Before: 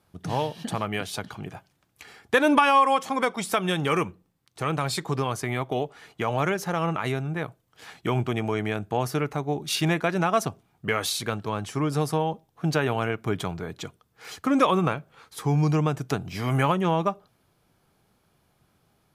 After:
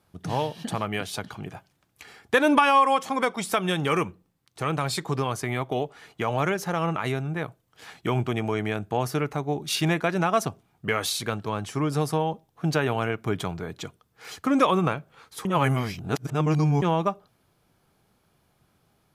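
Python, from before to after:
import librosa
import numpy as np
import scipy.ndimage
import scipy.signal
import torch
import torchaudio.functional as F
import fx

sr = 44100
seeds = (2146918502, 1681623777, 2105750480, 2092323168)

y = fx.edit(x, sr, fx.reverse_span(start_s=15.45, length_s=1.37), tone=tone)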